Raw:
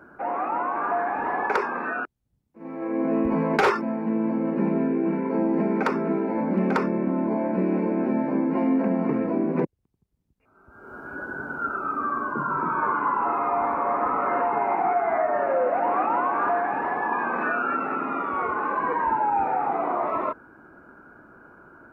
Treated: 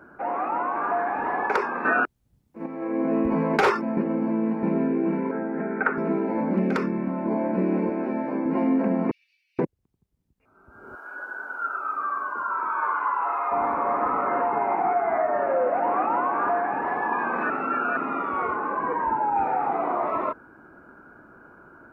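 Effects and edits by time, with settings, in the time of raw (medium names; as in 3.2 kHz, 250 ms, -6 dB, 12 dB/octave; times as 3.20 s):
1.85–2.66 s: gain +7.5 dB
3.97–4.63 s: reverse
5.31–5.98 s: cabinet simulation 170–2100 Hz, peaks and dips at 200 Hz -6 dB, 320 Hz -8 dB, 550 Hz -6 dB, 1 kHz -9 dB, 1.5 kHz +10 dB
6.59–7.24 s: peaking EQ 1.3 kHz -> 270 Hz -9.5 dB
7.89–8.46 s: high-pass 330 Hz 6 dB/octave
9.11–9.59 s: steep high-pass 2.9 kHz 48 dB/octave
10.95–13.52 s: high-pass 730 Hz
14.21–16.87 s: treble shelf 4.3 kHz -9.5 dB
17.50–17.97 s: reverse
18.56–19.36 s: treble shelf 2.5 kHz -10.5 dB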